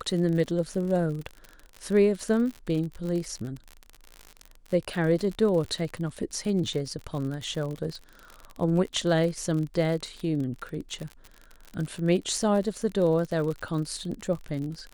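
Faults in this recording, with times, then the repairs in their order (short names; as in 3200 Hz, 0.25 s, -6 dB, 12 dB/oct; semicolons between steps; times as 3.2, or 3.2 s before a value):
crackle 53/s -32 dBFS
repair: de-click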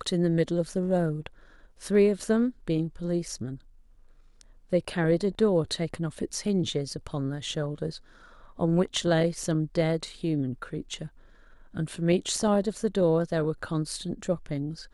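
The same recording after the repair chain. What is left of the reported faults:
none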